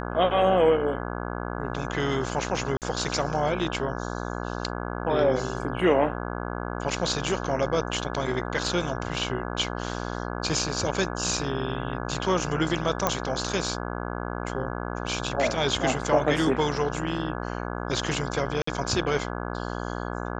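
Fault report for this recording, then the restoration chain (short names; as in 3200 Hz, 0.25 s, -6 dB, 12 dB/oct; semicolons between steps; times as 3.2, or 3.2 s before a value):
buzz 60 Hz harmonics 28 -32 dBFS
2.77–2.82 gap 48 ms
13.07 pop -8 dBFS
18.62–18.67 gap 54 ms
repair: de-click; de-hum 60 Hz, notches 28; interpolate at 2.77, 48 ms; interpolate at 18.62, 54 ms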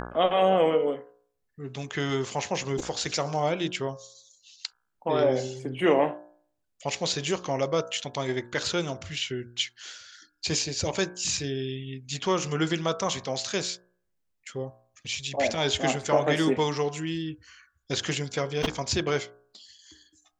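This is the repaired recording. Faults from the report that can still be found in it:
none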